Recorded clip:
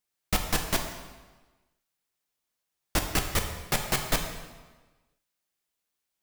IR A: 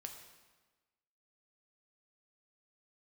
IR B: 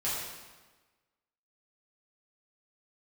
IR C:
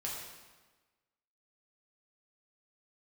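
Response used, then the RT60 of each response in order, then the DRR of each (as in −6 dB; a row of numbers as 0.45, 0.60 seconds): A; 1.3, 1.3, 1.3 seconds; 3.5, −10.0, −4.5 decibels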